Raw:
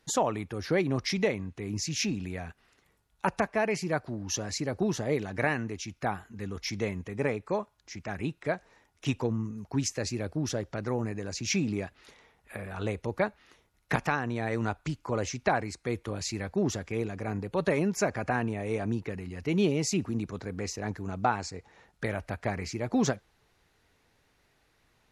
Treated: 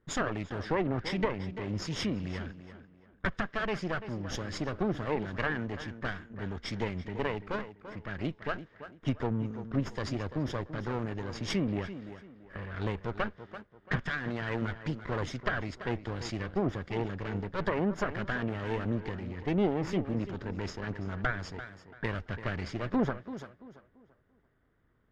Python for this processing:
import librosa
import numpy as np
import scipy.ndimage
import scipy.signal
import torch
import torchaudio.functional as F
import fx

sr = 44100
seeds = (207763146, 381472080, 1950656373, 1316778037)

y = fx.lower_of_two(x, sr, delay_ms=0.59)
y = fx.env_lowpass(y, sr, base_hz=1200.0, full_db=-27.5)
y = fx.echo_tape(y, sr, ms=338, feedback_pct=35, wet_db=-10.0, lp_hz=2100.0, drive_db=20.0, wow_cents=11)
y = fx.env_lowpass_down(y, sr, base_hz=1800.0, full_db=-25.0)